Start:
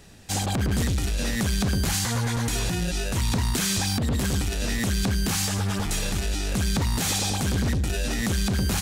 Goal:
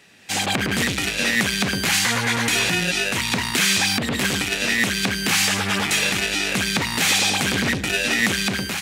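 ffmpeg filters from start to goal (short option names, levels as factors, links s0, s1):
-af "highpass=180,equalizer=f=2300:t=o:w=1.4:g=11.5,dynaudnorm=f=130:g=5:m=3.76,volume=0.596"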